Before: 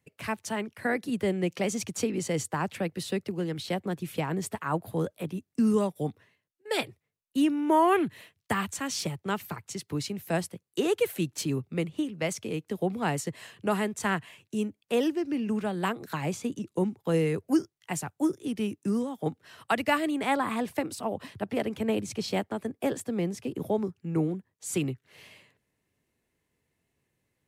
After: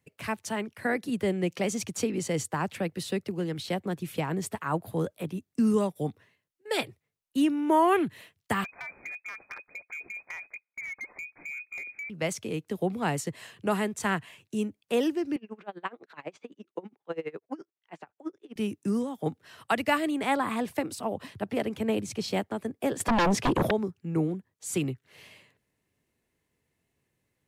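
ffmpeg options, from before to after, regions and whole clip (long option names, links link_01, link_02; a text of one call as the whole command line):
ffmpeg -i in.wav -filter_complex "[0:a]asettb=1/sr,asplit=3[link_01][link_02][link_03];[link_01]atrim=end=8.644[link_04];[link_02]atrim=start=8.64:end=12.1,asetpts=PTS-STARTPTS,afade=type=in:duration=0.004:curve=qsin,afade=type=out:start_time=3.456:duration=0.004:curve=qsin,lowpass=frequency=2200:width_type=q:width=0.5098,lowpass=frequency=2200:width_type=q:width=0.6013,lowpass=frequency=2200:width_type=q:width=0.9,lowpass=frequency=2200:width_type=q:width=2.563,afreqshift=-2600,acompressor=threshold=-34dB:ratio=10:attack=3.2:release=140:knee=1:detection=peak,volume=33.5dB,asoftclip=hard,volume=-33.5dB[link_05];[link_03]atrim=start=12.096[link_06];[link_04][link_05]acrossfade=duration=0.004:curve1=hsin:curve2=qsin[link_07];[link_07][link_06]acrossfade=duration=0.004:curve1=qsin:curve2=hsin,asettb=1/sr,asplit=3[link_08][link_09][link_10];[link_08]atrim=end=15.364[link_11];[link_09]atrim=start=15.36:end=18.56,asetpts=PTS-STARTPTS,afade=type=in:duration=0.004:curve=qsin,afade=type=out:start_time=3.196:duration=0.004:curve=qsin,highpass=390,lowpass=2800,aeval=exprs='val(0)*pow(10,-27*(0.5-0.5*cos(2*PI*12*n/s))/20)':channel_layout=same[link_12];[link_10]atrim=start=18.556[link_13];[link_11][link_12]acrossfade=duration=0.004:curve1=hsin:curve2=qsin[link_14];[link_14][link_13]acrossfade=duration=0.004:curve1=qsin:curve2=hsin,asettb=1/sr,asplit=3[link_15][link_16][link_17];[link_15]atrim=end=23.004[link_18];[link_16]atrim=start=23:end=23.71,asetpts=PTS-STARTPTS,afade=type=in:duration=0.004:curve=qsin,afade=type=out:start_time=0.706:duration=0.004:curve=qsin,lowpass=frequency=3600:poles=1,lowshelf=frequency=110:gain=-10.5,aeval=exprs='0.106*sin(PI/2*5.01*val(0)/0.106)':channel_layout=same[link_19];[link_17]atrim=start=23.706[link_20];[link_18][link_19]acrossfade=duration=0.004:curve1=hsin:curve2=qsin[link_21];[link_21][link_20]acrossfade=duration=0.004:curve1=qsin:curve2=hsin" out.wav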